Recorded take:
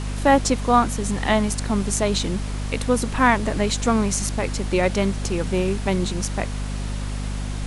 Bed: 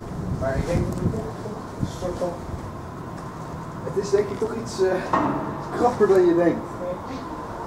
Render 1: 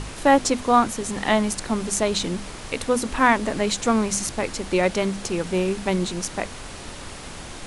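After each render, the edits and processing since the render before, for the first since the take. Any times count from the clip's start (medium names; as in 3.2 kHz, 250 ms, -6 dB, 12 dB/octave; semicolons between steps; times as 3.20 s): hum notches 50/100/150/200/250 Hz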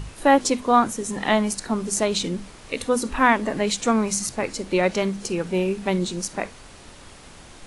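noise print and reduce 8 dB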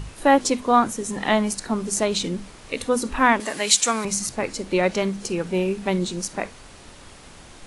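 3.40–4.05 s: tilt EQ +4 dB/octave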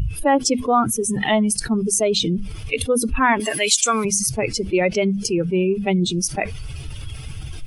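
expander on every frequency bin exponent 2; level flattener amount 70%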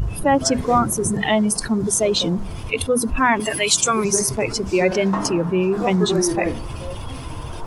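add bed -4.5 dB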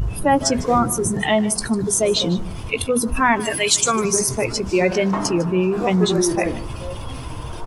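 doubling 17 ms -13.5 dB; delay 152 ms -17.5 dB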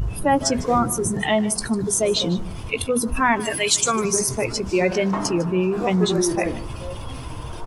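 trim -2 dB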